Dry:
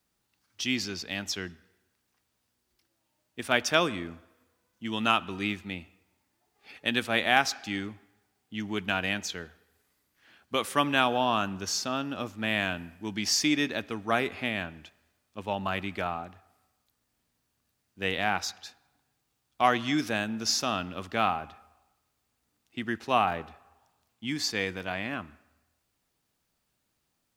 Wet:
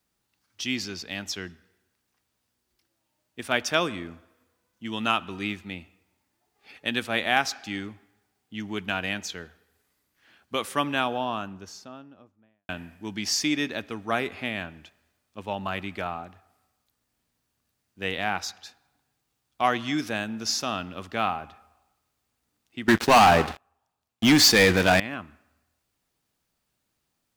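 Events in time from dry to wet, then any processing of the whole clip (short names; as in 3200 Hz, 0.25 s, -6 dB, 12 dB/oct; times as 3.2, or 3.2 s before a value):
10.58–12.69 studio fade out
22.88–25 sample leveller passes 5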